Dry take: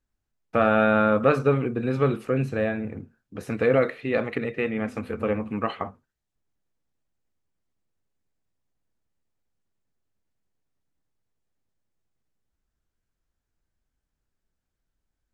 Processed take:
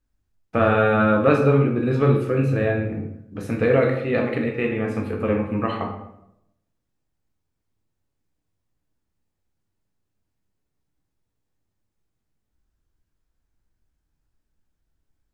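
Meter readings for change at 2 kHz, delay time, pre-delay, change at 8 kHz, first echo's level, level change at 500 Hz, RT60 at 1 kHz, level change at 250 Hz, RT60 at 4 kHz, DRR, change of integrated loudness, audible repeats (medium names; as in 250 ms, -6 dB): +2.5 dB, no echo, 12 ms, no reading, no echo, +3.0 dB, 0.75 s, +4.0 dB, 0.50 s, 1.0 dB, +3.5 dB, no echo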